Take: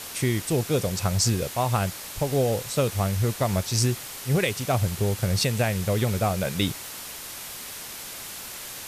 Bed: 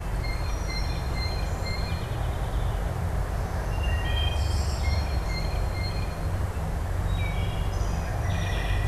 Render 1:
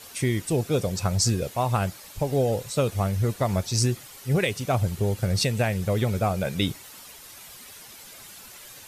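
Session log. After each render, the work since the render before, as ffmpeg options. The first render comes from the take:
ffmpeg -i in.wav -af "afftdn=noise_reduction=10:noise_floor=-38" out.wav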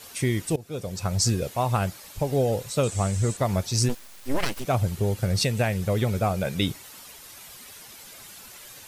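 ffmpeg -i in.wav -filter_complex "[0:a]asettb=1/sr,asplit=3[link_01][link_02][link_03];[link_01]atrim=end=2.834[link_04];[link_02]atrim=start=2.83:end=3.37,asetpts=PTS-STARTPTS,afade=type=in:duration=0.004:curve=qsin,afade=type=out:start_time=0.536:duration=0.004:curve=qsin,lowpass=frequency=7800:width_type=q:width=6.4[link_05];[link_03]atrim=start=3.366[link_06];[link_04][link_05]acrossfade=duration=0.004:curve1=hsin:curve2=qsin[link_07];[link_07][link_06]acrossfade=duration=0.004:curve1=qsin:curve2=hsin,asplit=3[link_08][link_09][link_10];[link_08]afade=type=out:start_time=3.88:duration=0.02[link_11];[link_09]aeval=exprs='abs(val(0))':channel_layout=same,afade=type=in:start_time=3.88:duration=0.02,afade=type=out:start_time=4.64:duration=0.02[link_12];[link_10]afade=type=in:start_time=4.64:duration=0.02[link_13];[link_11][link_12][link_13]amix=inputs=3:normalize=0,asplit=2[link_14][link_15];[link_14]atrim=end=0.56,asetpts=PTS-STARTPTS,afade=type=out:start_time=0.556:duration=0.004:curve=hsin:silence=0.1[link_16];[link_15]atrim=start=0.56,asetpts=PTS-STARTPTS,afade=type=in:duration=0.69:silence=0.1[link_17];[link_16][link_17]concat=n=2:v=0:a=1" out.wav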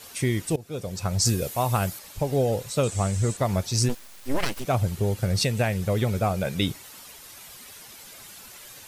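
ffmpeg -i in.wav -filter_complex "[0:a]asettb=1/sr,asplit=3[link_01][link_02][link_03];[link_01]atrim=end=1.254[link_04];[link_02]atrim=start=1.25:end=1.99,asetpts=PTS-STARTPTS,afade=type=in:duration=0.004:curve=qsin,afade=type=out:start_time=0.736:duration=0.004:curve=qsin,highshelf=frequency=8300:gain=12[link_05];[link_03]atrim=start=1.986[link_06];[link_04][link_05]acrossfade=duration=0.004:curve1=hsin:curve2=qsin[link_07];[link_07][link_06]acrossfade=duration=0.004:curve1=qsin:curve2=hsin" out.wav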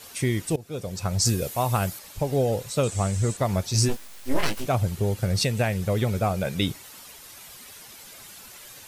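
ffmpeg -i in.wav -filter_complex "[0:a]asettb=1/sr,asplit=3[link_01][link_02][link_03];[link_01]atrim=end=3.724[link_04];[link_02]atrim=start=3.72:end=4.69,asetpts=PTS-STARTPTS,afade=type=in:duration=0.004:curve=qsin,afade=type=out:start_time=0.966:duration=0.004:curve=qsin,asplit=2[link_05][link_06];[link_06]adelay=19,volume=-4dB[link_07];[link_05][link_07]amix=inputs=2:normalize=0,atrim=end_sample=42777[link_08];[link_03]atrim=start=4.686[link_09];[link_04][link_08]acrossfade=duration=0.004:curve1=hsin:curve2=qsin[link_10];[link_10][link_09]acrossfade=duration=0.004:curve1=qsin:curve2=hsin" out.wav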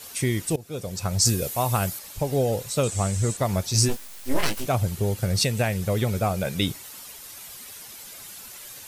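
ffmpeg -i in.wav -af "highshelf=frequency=5600:gain=5.5" out.wav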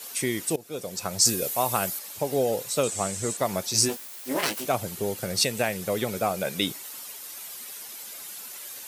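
ffmpeg -i in.wav -af "highpass=240,highshelf=frequency=12000:gain=5" out.wav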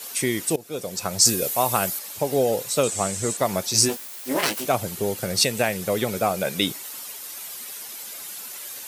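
ffmpeg -i in.wav -af "volume=3.5dB" out.wav

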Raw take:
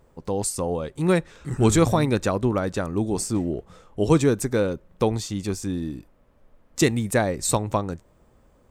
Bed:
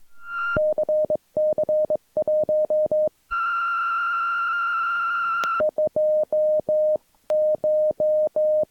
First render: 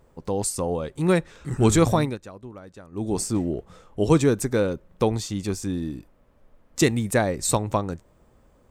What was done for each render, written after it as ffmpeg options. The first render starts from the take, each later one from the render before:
ffmpeg -i in.wav -filter_complex "[0:a]asplit=3[link_01][link_02][link_03];[link_01]atrim=end=2.18,asetpts=PTS-STARTPTS,afade=type=out:start_time=1.99:duration=0.19:silence=0.125893[link_04];[link_02]atrim=start=2.18:end=2.91,asetpts=PTS-STARTPTS,volume=-18dB[link_05];[link_03]atrim=start=2.91,asetpts=PTS-STARTPTS,afade=type=in:duration=0.19:silence=0.125893[link_06];[link_04][link_05][link_06]concat=n=3:v=0:a=1" out.wav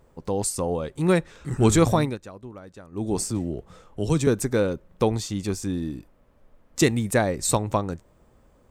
ffmpeg -i in.wav -filter_complex "[0:a]asettb=1/sr,asplit=3[link_01][link_02][link_03];[link_01]atrim=end=3.304[link_04];[link_02]atrim=start=3.3:end=4.27,asetpts=PTS-STARTPTS,afade=type=in:duration=0.004:curve=qsin,afade=type=out:start_time=0.966:duration=0.004:curve=qsin,acrossover=split=190|3000[link_05][link_06][link_07];[link_06]acompressor=threshold=-36dB:ratio=1.5:attack=3.2:release=140:knee=2.83:detection=peak[link_08];[link_05][link_08][link_07]amix=inputs=3:normalize=0[link_09];[link_03]atrim=start=4.266[link_10];[link_04][link_09]acrossfade=duration=0.004:curve1=hsin:curve2=qsin[link_11];[link_11][link_10]acrossfade=duration=0.004:curve1=qsin:curve2=hsin" out.wav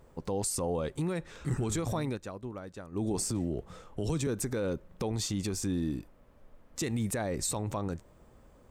ffmpeg -i in.wav -af "acompressor=threshold=-22dB:ratio=6,alimiter=limit=-23dB:level=0:latency=1:release=36" out.wav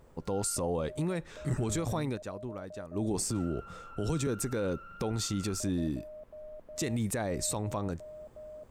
ffmpeg -i in.wav -i bed.wav -filter_complex "[1:a]volume=-26.5dB[link_01];[0:a][link_01]amix=inputs=2:normalize=0" out.wav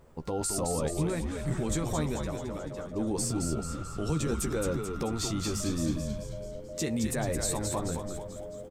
ffmpeg -i in.wav -filter_complex "[0:a]asplit=2[link_01][link_02];[link_02]adelay=13,volume=-7dB[link_03];[link_01][link_03]amix=inputs=2:normalize=0,asplit=2[link_04][link_05];[link_05]asplit=7[link_06][link_07][link_08][link_09][link_10][link_11][link_12];[link_06]adelay=218,afreqshift=-96,volume=-5dB[link_13];[link_07]adelay=436,afreqshift=-192,volume=-10.4dB[link_14];[link_08]adelay=654,afreqshift=-288,volume=-15.7dB[link_15];[link_09]adelay=872,afreqshift=-384,volume=-21.1dB[link_16];[link_10]adelay=1090,afreqshift=-480,volume=-26.4dB[link_17];[link_11]adelay=1308,afreqshift=-576,volume=-31.8dB[link_18];[link_12]adelay=1526,afreqshift=-672,volume=-37.1dB[link_19];[link_13][link_14][link_15][link_16][link_17][link_18][link_19]amix=inputs=7:normalize=0[link_20];[link_04][link_20]amix=inputs=2:normalize=0" out.wav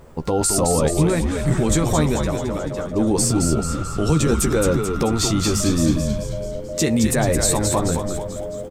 ffmpeg -i in.wav -af "volume=12dB" out.wav

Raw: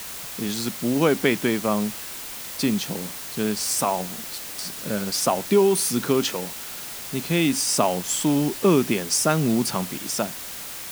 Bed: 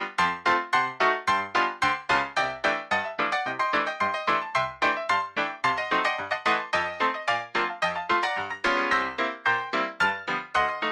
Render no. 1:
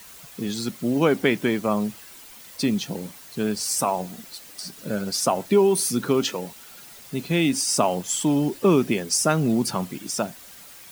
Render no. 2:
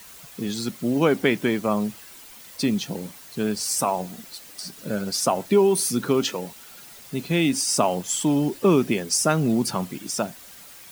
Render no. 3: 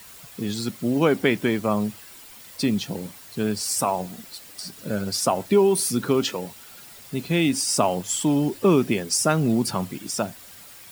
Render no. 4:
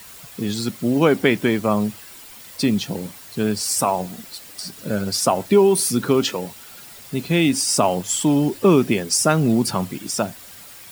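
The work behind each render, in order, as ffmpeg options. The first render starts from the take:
ffmpeg -i in.wav -af "afftdn=noise_reduction=11:noise_floor=-35" out.wav
ffmpeg -i in.wav -af anull out.wav
ffmpeg -i in.wav -af "equalizer=frequency=100:width_type=o:width=0.31:gain=8.5,bandreject=frequency=6200:width=20" out.wav
ffmpeg -i in.wav -af "volume=3.5dB,alimiter=limit=-3dB:level=0:latency=1" out.wav

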